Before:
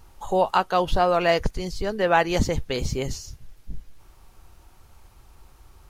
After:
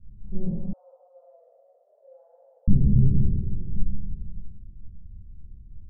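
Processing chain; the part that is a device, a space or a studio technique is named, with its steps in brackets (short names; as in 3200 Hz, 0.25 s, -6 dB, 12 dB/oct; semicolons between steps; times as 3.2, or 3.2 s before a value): spectral trails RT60 2.48 s; club heard from the street (limiter -9 dBFS, peak gain reduction 7.5 dB; LPF 200 Hz 24 dB/oct; reverb RT60 0.60 s, pre-delay 21 ms, DRR -6 dB); 0.73–2.68 steep high-pass 520 Hz 96 dB/oct; gain -2 dB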